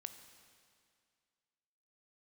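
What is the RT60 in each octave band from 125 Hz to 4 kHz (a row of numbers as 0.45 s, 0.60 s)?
2.1 s, 2.2 s, 2.2 s, 2.2 s, 2.1 s, 2.1 s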